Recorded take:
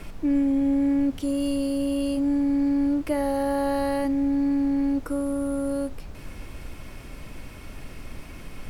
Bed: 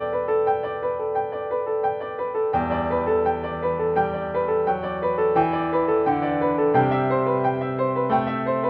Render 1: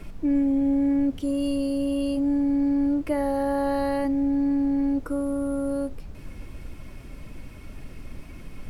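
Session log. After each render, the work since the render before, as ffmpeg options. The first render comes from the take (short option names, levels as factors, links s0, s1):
-af "afftdn=nr=6:nf=-41"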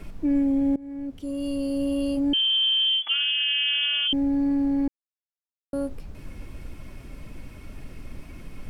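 -filter_complex "[0:a]asettb=1/sr,asplit=3[s0][s1][s2];[s0]atrim=end=2.334[s3];[s1]atrim=start=2.33:end=4.13,asetpts=PTS-STARTPTS,afade=t=in:d=0.004:c=qsin,afade=t=out:st=1.796:d=0.004:c=qsin,lowpass=f=2900:t=q:w=0.5098,lowpass=f=2900:t=q:w=0.6013,lowpass=f=2900:t=q:w=0.9,lowpass=f=2900:t=q:w=2.563,afreqshift=-3400[s4];[s2]atrim=start=4.126[s5];[s3][s4]acrossfade=d=0.004:c1=hsin:c2=qsin[s6];[s6][s5]acrossfade=d=0.004:c1=qsin:c2=hsin,asplit=4[s7][s8][s9][s10];[s7]atrim=end=0.76,asetpts=PTS-STARTPTS,afade=t=out:st=0.756:d=0.004:c=hsin:silence=0.0749894[s11];[s8]atrim=start=0.76:end=4.88,asetpts=PTS-STARTPTS,afade=t=in:d=1.07:silence=0.0749894,afade=t=out:st=4.116:d=0.004:c=hsin[s12];[s9]atrim=start=4.88:end=5.73,asetpts=PTS-STARTPTS,volume=0[s13];[s10]atrim=start=5.73,asetpts=PTS-STARTPTS,afade=t=in:d=0.004:c=hsin[s14];[s11][s12][s13][s14]concat=n=4:v=0:a=1"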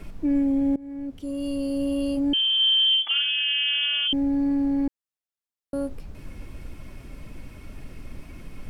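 -filter_complex "[0:a]asettb=1/sr,asplit=3[s0][s1][s2];[s0]atrim=end=2.564[s3];[s1]atrim=start=2.56:end=3.44,asetpts=PTS-STARTPTS,afade=t=in:d=0.004:c=qsin,afade=t=out:st=0.876:d=0.004:c=qsin,asplit=2[s4][s5];[s5]adelay=35,volume=0.398[s6];[s4][s6]amix=inputs=2:normalize=0,atrim=end_sample=38808[s7];[s2]atrim=start=3.436[s8];[s3][s7]acrossfade=d=0.004:c1=hsin:c2=qsin[s9];[s9][s8]acrossfade=d=0.004:c1=qsin:c2=hsin"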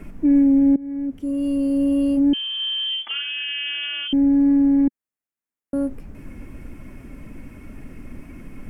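-af "equalizer=f=250:t=o:w=1:g=8,equalizer=f=2000:t=o:w=1:g=5,equalizer=f=4000:t=o:w=1:g=-11"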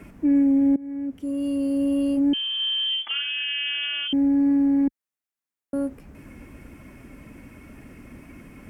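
-af "highpass=44,lowshelf=f=430:g=-5"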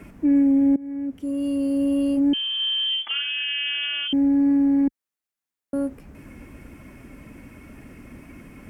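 -af "volume=1.12"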